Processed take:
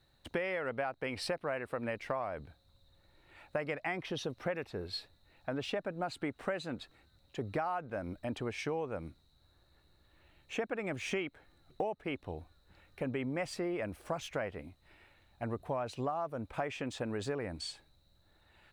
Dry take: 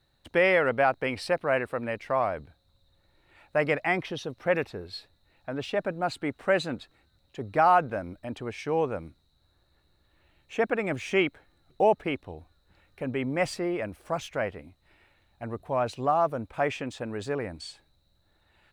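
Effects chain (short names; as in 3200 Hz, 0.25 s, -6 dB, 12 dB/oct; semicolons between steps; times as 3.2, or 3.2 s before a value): compressor 12:1, threshold -32 dBFS, peak gain reduction 16.5 dB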